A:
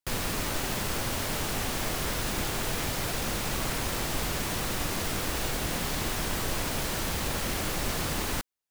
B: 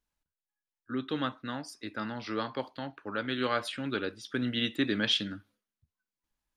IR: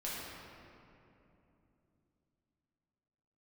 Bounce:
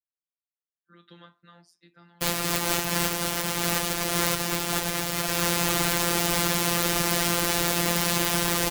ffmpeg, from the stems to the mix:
-filter_complex "[0:a]acrusher=bits=4:mix=0:aa=0.5,adelay=2150,volume=0.5dB[link_01];[1:a]asubboost=boost=11:cutoff=150,acrossover=split=190|400[link_02][link_03][link_04];[link_02]acompressor=threshold=-41dB:ratio=4[link_05];[link_03]acompressor=threshold=-39dB:ratio=4[link_06];[link_04]acompressor=threshold=-34dB:ratio=4[link_07];[link_05][link_06][link_07]amix=inputs=3:normalize=0,flanger=delay=5:depth=6.2:regen=64:speed=0.43:shape=sinusoidal,volume=-19dB,asplit=2[link_08][link_09];[link_09]apad=whole_len=478708[link_10];[link_01][link_10]sidechaincompress=threshold=-59dB:ratio=3:attack=16:release=210[link_11];[link_11][link_08]amix=inputs=2:normalize=0,afftfilt=real='hypot(re,im)*cos(PI*b)':imag='0':win_size=1024:overlap=0.75,highpass=frequency=78:poles=1,dynaudnorm=framelen=230:gausssize=5:maxgain=13dB"

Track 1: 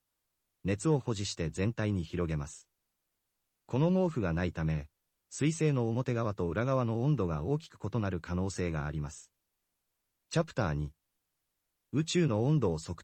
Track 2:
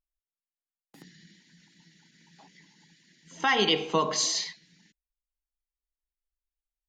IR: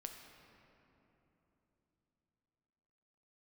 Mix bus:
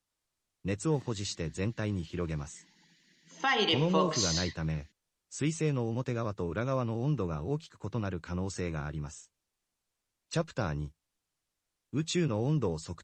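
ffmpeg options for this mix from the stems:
-filter_complex "[0:a]highshelf=frequency=5800:gain=6.5,volume=-1.5dB[link_01];[1:a]highpass=170,acontrast=59,volume=-9.5dB[link_02];[link_01][link_02]amix=inputs=2:normalize=0,lowpass=8000"

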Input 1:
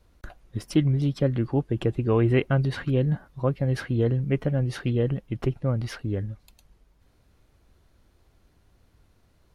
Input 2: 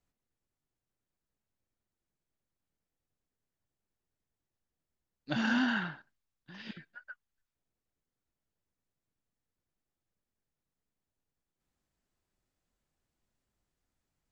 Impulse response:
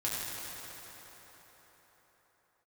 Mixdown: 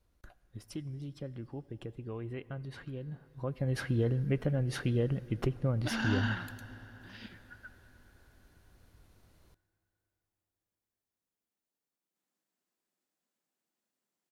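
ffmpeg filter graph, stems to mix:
-filter_complex "[0:a]acompressor=threshold=-29dB:ratio=2,volume=-1.5dB,afade=type=in:start_time=3.31:duration=0.44:silence=0.251189,asplit=2[link_01][link_02];[link_02]volume=-23dB[link_03];[1:a]highpass=frequency=190:width=0.5412,highpass=frequency=190:width=1.3066,adelay=550,volume=-4.5dB,asplit=2[link_04][link_05];[link_05]volume=-17.5dB[link_06];[2:a]atrim=start_sample=2205[link_07];[link_03][link_06]amix=inputs=2:normalize=0[link_08];[link_08][link_07]afir=irnorm=-1:irlink=0[link_09];[link_01][link_04][link_09]amix=inputs=3:normalize=0,highshelf=frequency=7800:gain=6"

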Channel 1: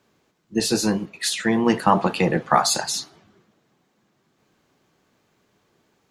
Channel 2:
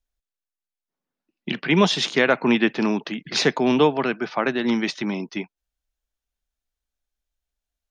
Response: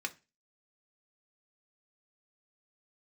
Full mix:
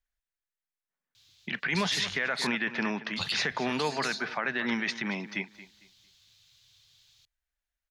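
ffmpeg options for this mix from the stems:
-filter_complex "[0:a]firequalizer=gain_entry='entry(110,0);entry(200,-26);entry(3600,14);entry(8000,2)':delay=0.05:min_phase=1,acompressor=threshold=-27dB:ratio=3,adelay=1150,volume=2dB,asplit=3[link_01][link_02][link_03];[link_01]atrim=end=2.47,asetpts=PTS-STARTPTS,afade=type=out:start_time=2.466:duration=0.004:curve=hsin[link_04];[link_02]atrim=start=2.47:end=3.16,asetpts=PTS-STARTPTS,volume=0[link_05];[link_03]atrim=start=3.16,asetpts=PTS-STARTPTS,afade=type=in:duration=0.004:curve=hsin[link_06];[link_04][link_05][link_06]concat=n=3:v=0:a=1[link_07];[1:a]equalizer=frequency=1800:width_type=o:width=0.94:gain=10,dynaudnorm=framelen=280:gausssize=13:maxgain=11.5dB,volume=-6dB,asplit=3[link_08][link_09][link_10];[link_09]volume=-17dB[link_11];[link_10]apad=whole_len=324162[link_12];[link_07][link_12]sidechaincompress=threshold=-34dB:ratio=8:attack=16:release=161[link_13];[link_11]aecho=0:1:226|452|678|904:1|0.26|0.0676|0.0176[link_14];[link_13][link_08][link_14]amix=inputs=3:normalize=0,equalizer=frequency=320:width=1.9:gain=-7.5,alimiter=limit=-18.5dB:level=0:latency=1:release=26"

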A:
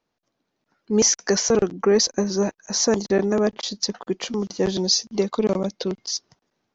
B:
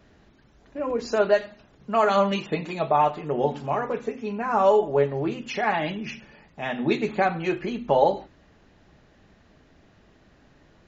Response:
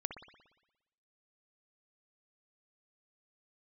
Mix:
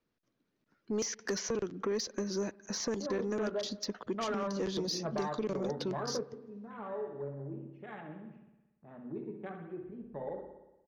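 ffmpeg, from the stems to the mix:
-filter_complex "[0:a]highshelf=frequency=2800:gain=-10.5,volume=-1.5dB,asplit=3[link_01][link_02][link_03];[link_02]volume=-20.5dB[link_04];[1:a]lowpass=1500,afwtdn=0.0251,adelay=2250,volume=-2.5dB,asplit=2[link_05][link_06];[link_06]volume=-12dB[link_07];[link_03]apad=whole_len=578653[link_08];[link_05][link_08]sidechaingate=range=-33dB:threshold=-43dB:ratio=16:detection=peak[link_09];[2:a]atrim=start_sample=2205[link_10];[link_04][link_07]amix=inputs=2:normalize=0[link_11];[link_11][link_10]afir=irnorm=-1:irlink=0[link_12];[link_01][link_09][link_12]amix=inputs=3:normalize=0,equalizer=frequency=770:width=1.4:gain=-10.5,acrossover=split=410|3200[link_13][link_14][link_15];[link_13]acompressor=threshold=-37dB:ratio=4[link_16];[link_14]acompressor=threshold=-34dB:ratio=4[link_17];[link_15]acompressor=threshold=-38dB:ratio=4[link_18];[link_16][link_17][link_18]amix=inputs=3:normalize=0,asoftclip=type=tanh:threshold=-25.5dB"

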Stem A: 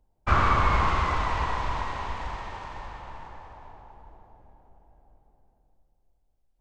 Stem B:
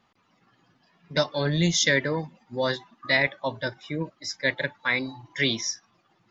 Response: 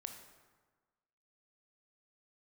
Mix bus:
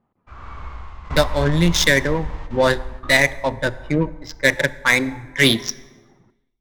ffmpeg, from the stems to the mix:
-filter_complex "[0:a]asubboost=boost=8.5:cutoff=98,volume=-12dB,asplit=2[link_01][link_02];[link_02]volume=-10.5dB[link_03];[1:a]tremolo=f=150:d=0.261,adynamicsmooth=sensitivity=4:basefreq=870,volume=0dB,asplit=3[link_04][link_05][link_06];[link_05]volume=-6dB[link_07];[link_06]apad=whole_len=291151[link_08];[link_01][link_08]sidechaingate=range=-33dB:threshold=-57dB:ratio=16:detection=peak[link_09];[2:a]atrim=start_sample=2205[link_10];[link_03][link_07]amix=inputs=2:normalize=0[link_11];[link_11][link_10]afir=irnorm=-1:irlink=0[link_12];[link_09][link_04][link_12]amix=inputs=3:normalize=0,dynaudnorm=framelen=120:gausssize=7:maxgain=11dB"

